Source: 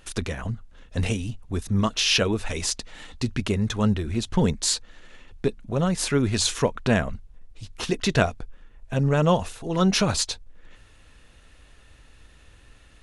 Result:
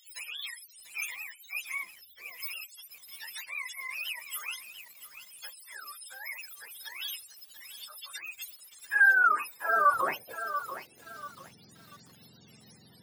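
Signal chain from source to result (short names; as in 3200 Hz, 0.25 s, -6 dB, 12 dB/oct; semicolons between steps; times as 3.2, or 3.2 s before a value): spectrum mirrored in octaves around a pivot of 470 Hz; 1.83–2.4 ten-band EQ 250 Hz +5 dB, 1000 Hz -6 dB, 2000 Hz -5 dB, 4000 Hz +4 dB, 8000 Hz -12 dB; limiter -18 dBFS, peak gain reduction 9 dB; high-pass sweep 3500 Hz -> 210 Hz, 8.22–11.4; lo-fi delay 0.688 s, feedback 35%, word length 8-bit, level -10 dB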